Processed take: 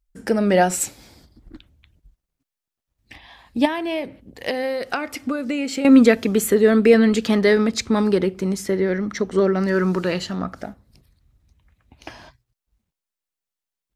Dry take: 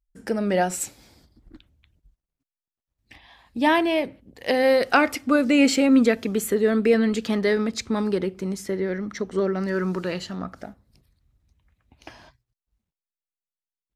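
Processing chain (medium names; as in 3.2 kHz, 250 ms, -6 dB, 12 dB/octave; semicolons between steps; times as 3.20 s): 3.65–5.85 s: compression 12:1, threshold -27 dBFS, peak gain reduction 15 dB; trim +5.5 dB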